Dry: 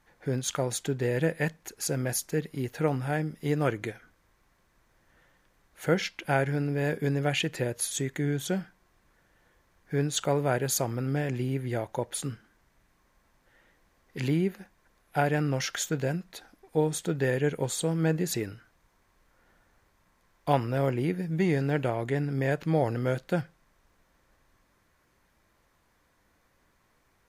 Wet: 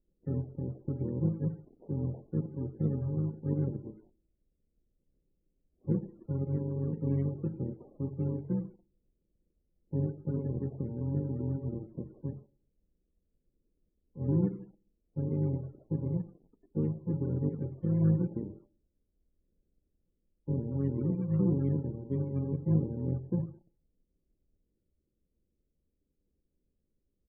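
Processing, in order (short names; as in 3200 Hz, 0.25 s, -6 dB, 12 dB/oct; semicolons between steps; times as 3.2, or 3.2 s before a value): FFT order left unsorted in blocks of 64 samples; bell 110 Hz -9 dB 0.76 oct; on a send at -14 dB: reverb RT60 0.55 s, pre-delay 34 ms; on the sum: dynamic EQ 150 Hz, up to +7 dB, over -47 dBFS, Q 1.2; inverse Chebyshev low-pass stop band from 3300 Hz, stop band 80 dB; de-hum 423.4 Hz, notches 22; in parallel at -5.5 dB: companded quantiser 4-bit; on the sum: harmoniser -7 st -10 dB; loudest bins only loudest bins 32; gain -6.5 dB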